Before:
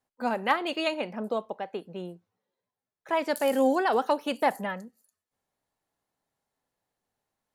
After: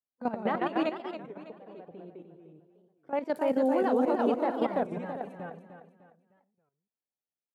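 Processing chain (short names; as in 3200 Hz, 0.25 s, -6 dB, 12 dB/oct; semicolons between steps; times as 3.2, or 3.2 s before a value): echoes that change speed 98 ms, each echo -1 st, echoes 2; level quantiser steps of 13 dB; LPF 2800 Hz 6 dB/oct; gate -51 dBFS, range -15 dB; 0.91–3.14 compressor 5:1, threshold -46 dBFS, peak gain reduction 18.5 dB; HPF 210 Hz 6 dB/oct; tilt shelf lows +7 dB, about 690 Hz; feedback echo 0.302 s, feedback 37%, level -10 dB; record warp 33 1/3 rpm, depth 250 cents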